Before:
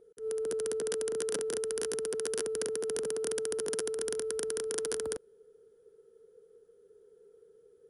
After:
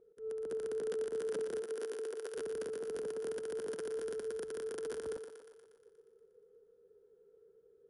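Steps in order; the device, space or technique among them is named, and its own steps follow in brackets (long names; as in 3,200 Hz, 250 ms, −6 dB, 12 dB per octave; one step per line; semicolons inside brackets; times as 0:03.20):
0:01.61–0:02.34: high-pass filter 200 Hz → 420 Hz 24 dB per octave
through cloth (high-shelf EQ 3,500 Hz −15.5 dB)
feedback echo with a high-pass in the loop 119 ms, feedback 66%, high-pass 290 Hz, level −7.5 dB
level −5 dB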